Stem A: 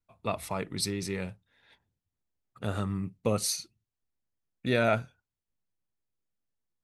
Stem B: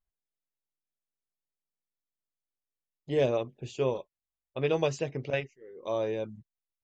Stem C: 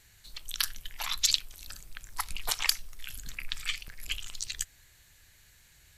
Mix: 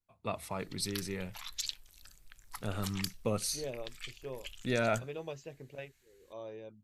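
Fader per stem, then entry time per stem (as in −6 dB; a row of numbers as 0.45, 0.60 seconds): −5.0, −14.5, −12.0 decibels; 0.00, 0.45, 0.35 seconds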